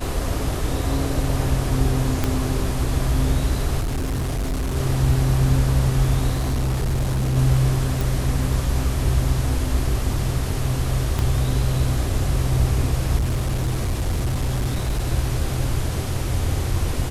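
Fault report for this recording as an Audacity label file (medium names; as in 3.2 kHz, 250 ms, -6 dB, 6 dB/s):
2.240000	2.240000	pop -7 dBFS
3.800000	4.770000	clipped -20.5 dBFS
6.330000	7.370000	clipped -18 dBFS
8.010000	8.010000	pop
11.190000	11.190000	pop -10 dBFS
13.180000	15.070000	clipped -18 dBFS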